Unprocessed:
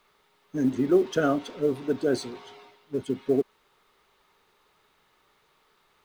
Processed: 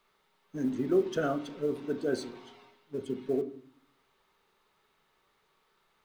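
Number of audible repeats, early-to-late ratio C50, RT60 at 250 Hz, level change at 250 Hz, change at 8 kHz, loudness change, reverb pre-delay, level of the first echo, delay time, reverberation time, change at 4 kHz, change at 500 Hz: no echo audible, 15.0 dB, 0.85 s, −6.0 dB, −6.5 dB, −5.5 dB, 4 ms, no echo audible, no echo audible, 0.45 s, −6.0 dB, −5.5 dB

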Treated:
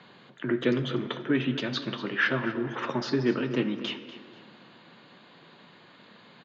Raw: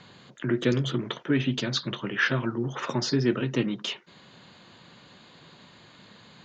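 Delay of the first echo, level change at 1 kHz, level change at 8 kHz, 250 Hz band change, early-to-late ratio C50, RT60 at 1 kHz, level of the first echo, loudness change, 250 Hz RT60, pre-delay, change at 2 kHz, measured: 243 ms, +0.5 dB, can't be measured, −0.5 dB, 10.0 dB, 2.2 s, −15.0 dB, −1.5 dB, 2.2 s, 7 ms, 0.0 dB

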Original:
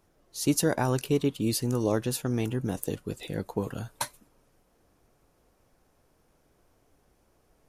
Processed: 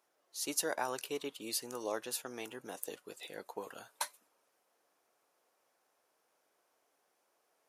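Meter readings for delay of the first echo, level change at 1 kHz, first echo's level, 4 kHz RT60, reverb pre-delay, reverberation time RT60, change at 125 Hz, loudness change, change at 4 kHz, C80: no echo audible, −6.0 dB, no echo audible, no reverb audible, no reverb audible, no reverb audible, −31.0 dB, −10.5 dB, −5.0 dB, no reverb audible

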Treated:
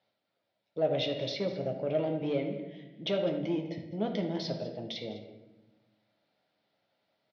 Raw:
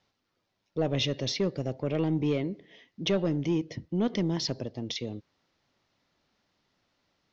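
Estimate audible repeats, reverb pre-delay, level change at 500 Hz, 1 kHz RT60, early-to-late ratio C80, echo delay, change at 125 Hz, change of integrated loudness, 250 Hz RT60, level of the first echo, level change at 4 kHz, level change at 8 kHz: 1, 9 ms, +0.5 dB, 0.85 s, 8.5 dB, 203 ms, −7.0 dB, −3.0 dB, 1.5 s, −16.0 dB, −4.5 dB, can't be measured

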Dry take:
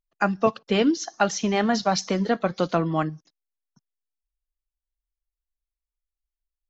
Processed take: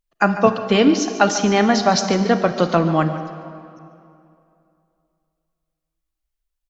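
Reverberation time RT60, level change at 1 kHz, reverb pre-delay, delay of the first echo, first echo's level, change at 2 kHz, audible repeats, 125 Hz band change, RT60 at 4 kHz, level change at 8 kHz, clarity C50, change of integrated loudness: 2.6 s, +6.5 dB, 32 ms, 146 ms, −14.0 dB, +6.5 dB, 1, +7.0 dB, 1.8 s, can't be measured, 8.5 dB, +6.5 dB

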